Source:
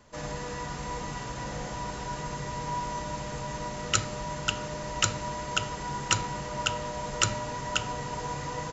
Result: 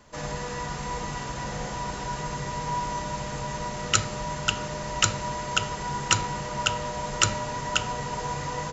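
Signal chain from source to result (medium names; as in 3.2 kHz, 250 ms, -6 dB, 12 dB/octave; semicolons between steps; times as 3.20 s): hum notches 60/120/180/240/300/360/420/480/540/600 Hz; trim +3.5 dB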